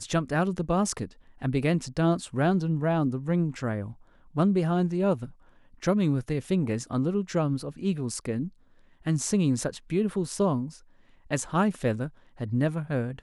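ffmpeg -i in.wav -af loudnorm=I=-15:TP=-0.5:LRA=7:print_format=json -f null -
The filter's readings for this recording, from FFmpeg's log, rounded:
"input_i" : "-27.9",
"input_tp" : "-11.6",
"input_lra" : "2.4",
"input_thresh" : "-38.4",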